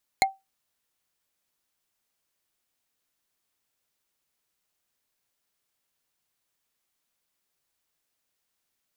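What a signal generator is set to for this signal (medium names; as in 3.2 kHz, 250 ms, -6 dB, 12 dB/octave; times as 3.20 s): wood hit bar, lowest mode 775 Hz, decay 0.20 s, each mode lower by 1.5 dB, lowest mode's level -14 dB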